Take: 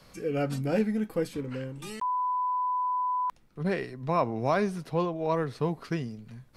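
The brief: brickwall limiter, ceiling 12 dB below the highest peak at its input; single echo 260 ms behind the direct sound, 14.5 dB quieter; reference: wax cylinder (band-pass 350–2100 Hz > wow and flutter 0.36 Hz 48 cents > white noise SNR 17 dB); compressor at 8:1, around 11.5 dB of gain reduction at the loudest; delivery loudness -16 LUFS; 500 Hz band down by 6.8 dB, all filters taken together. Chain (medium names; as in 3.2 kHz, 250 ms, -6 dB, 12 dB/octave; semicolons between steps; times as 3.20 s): peaking EQ 500 Hz -7 dB; compression 8:1, threshold -35 dBFS; peak limiter -36 dBFS; band-pass 350–2100 Hz; delay 260 ms -14.5 dB; wow and flutter 0.36 Hz 48 cents; white noise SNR 17 dB; trim +29 dB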